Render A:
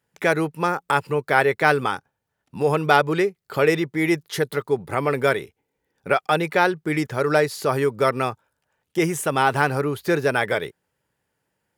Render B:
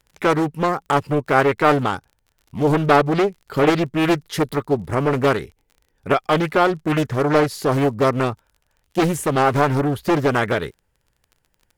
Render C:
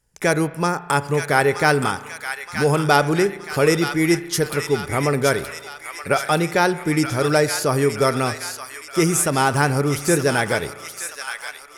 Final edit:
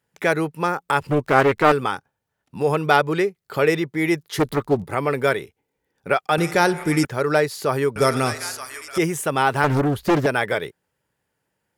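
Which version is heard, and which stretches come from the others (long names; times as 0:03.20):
A
0:01.01–0:01.72: punch in from B
0:04.39–0:04.84: punch in from B
0:06.38–0:07.05: punch in from C
0:07.96–0:08.98: punch in from C
0:09.64–0:10.26: punch in from B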